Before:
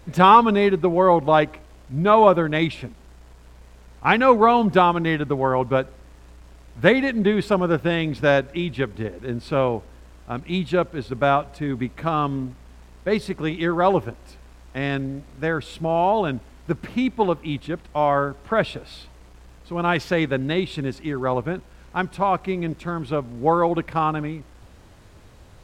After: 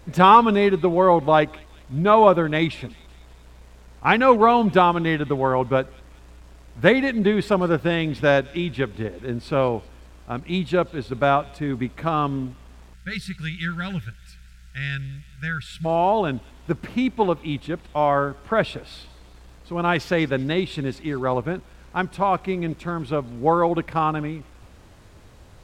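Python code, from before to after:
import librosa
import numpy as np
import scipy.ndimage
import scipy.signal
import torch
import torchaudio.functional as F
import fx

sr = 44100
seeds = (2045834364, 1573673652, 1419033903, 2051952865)

y = fx.echo_wet_highpass(x, sr, ms=194, feedback_pct=56, hz=3300.0, wet_db=-16)
y = fx.spec_box(y, sr, start_s=12.94, length_s=2.91, low_hz=200.0, high_hz=1300.0, gain_db=-23)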